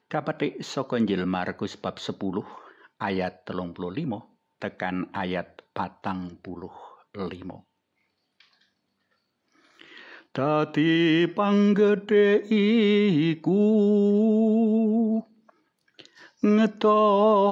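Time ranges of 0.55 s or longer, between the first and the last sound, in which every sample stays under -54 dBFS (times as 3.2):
7.62–8.4
8.64–9.52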